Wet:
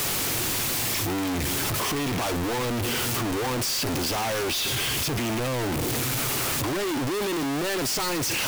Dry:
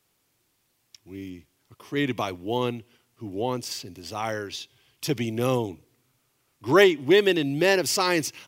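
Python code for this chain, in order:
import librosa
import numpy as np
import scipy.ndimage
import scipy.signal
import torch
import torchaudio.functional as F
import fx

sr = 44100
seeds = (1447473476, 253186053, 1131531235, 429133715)

y = np.sign(x) * np.sqrt(np.mean(np.square(x)))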